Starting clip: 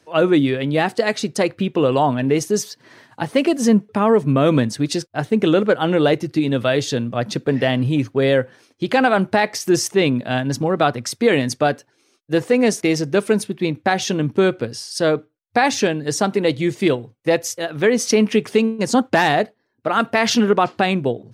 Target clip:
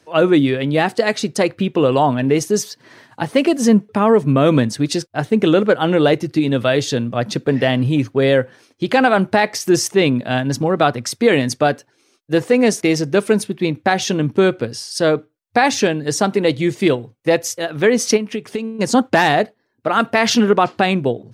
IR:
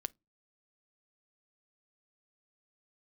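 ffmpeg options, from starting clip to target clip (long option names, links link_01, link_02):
-filter_complex "[0:a]asplit=3[link_01][link_02][link_03];[link_01]afade=type=out:start_time=18.16:duration=0.02[link_04];[link_02]acompressor=threshold=-22dB:ratio=10,afade=type=in:start_time=18.16:duration=0.02,afade=type=out:start_time=18.74:duration=0.02[link_05];[link_03]afade=type=in:start_time=18.74:duration=0.02[link_06];[link_04][link_05][link_06]amix=inputs=3:normalize=0,volume=2dB"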